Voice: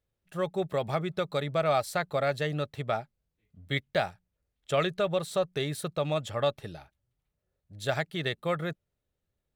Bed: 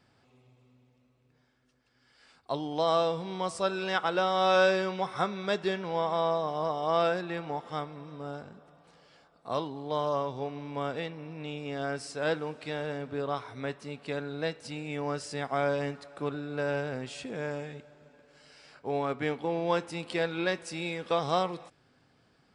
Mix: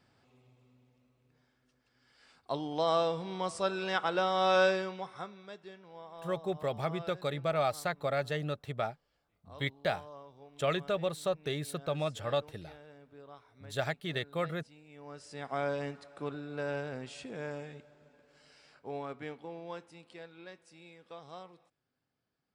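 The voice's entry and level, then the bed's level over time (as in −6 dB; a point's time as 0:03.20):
5.90 s, −4.0 dB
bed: 0:04.66 −2.5 dB
0:05.59 −19.5 dB
0:14.90 −19.5 dB
0:15.53 −5 dB
0:18.50 −5 dB
0:20.34 −20 dB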